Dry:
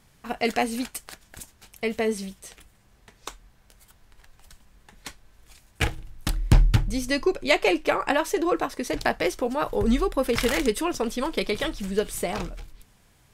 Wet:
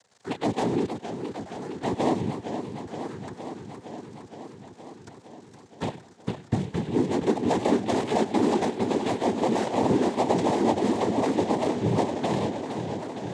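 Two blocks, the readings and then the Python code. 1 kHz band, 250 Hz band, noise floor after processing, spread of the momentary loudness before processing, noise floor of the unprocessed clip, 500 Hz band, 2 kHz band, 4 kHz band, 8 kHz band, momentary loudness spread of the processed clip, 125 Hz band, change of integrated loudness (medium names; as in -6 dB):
+2.0 dB, +3.0 dB, -51 dBFS, 21 LU, -60 dBFS, 0.0 dB, -9.0 dB, -6.0 dB, -6.5 dB, 17 LU, -2.0 dB, -1.0 dB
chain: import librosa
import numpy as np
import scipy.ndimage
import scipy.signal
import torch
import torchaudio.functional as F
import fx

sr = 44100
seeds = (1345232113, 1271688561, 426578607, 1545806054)

p1 = scipy.signal.medfilt(x, 41)
p2 = scipy.signal.sosfilt(scipy.signal.butter(2, 200.0, 'highpass', fs=sr, output='sos'), p1)
p3 = fx.fuzz(p2, sr, gain_db=38.0, gate_db=-46.0)
p4 = p2 + F.gain(torch.from_numpy(p3), -4.5).numpy()
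p5 = fx.dmg_crackle(p4, sr, seeds[0], per_s=150.0, level_db=-27.0)
p6 = p5 + fx.echo_single(p5, sr, ms=1040, db=-14.5, dry=0)
p7 = fx.env_phaser(p6, sr, low_hz=300.0, high_hz=1700.0, full_db=-15.0)
p8 = p7 + 10.0 ** (-17.0 / 20.0) * np.pad(p7, (int(98 * sr / 1000.0), 0))[:len(p7)]
p9 = fx.noise_vocoder(p8, sr, seeds[1], bands=6)
p10 = fx.echo_warbled(p9, sr, ms=466, feedback_pct=76, rate_hz=2.8, cents=152, wet_db=-8.5)
y = F.gain(torch.from_numpy(p10), -6.0).numpy()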